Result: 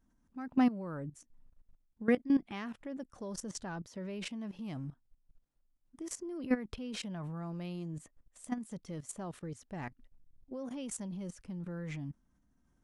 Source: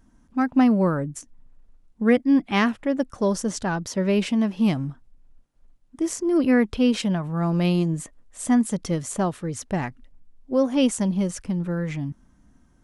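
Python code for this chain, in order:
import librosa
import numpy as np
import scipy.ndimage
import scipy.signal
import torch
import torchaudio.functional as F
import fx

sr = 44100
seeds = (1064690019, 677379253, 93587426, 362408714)

y = fx.level_steps(x, sr, step_db=16)
y = y * librosa.db_to_amplitude(-8.0)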